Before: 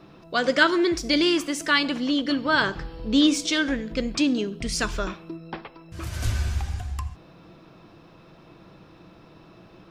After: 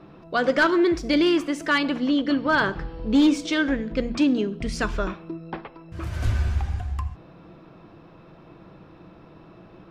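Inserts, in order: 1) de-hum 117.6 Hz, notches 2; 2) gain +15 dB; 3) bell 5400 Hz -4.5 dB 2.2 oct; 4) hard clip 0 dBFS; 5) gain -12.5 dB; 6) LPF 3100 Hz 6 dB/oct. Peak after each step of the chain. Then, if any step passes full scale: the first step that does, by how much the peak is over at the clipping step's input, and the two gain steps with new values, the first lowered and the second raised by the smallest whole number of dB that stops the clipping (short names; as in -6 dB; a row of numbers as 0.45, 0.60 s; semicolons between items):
-5.0, +10.0, +9.0, 0.0, -12.5, -12.5 dBFS; step 2, 9.0 dB; step 2 +6 dB, step 5 -3.5 dB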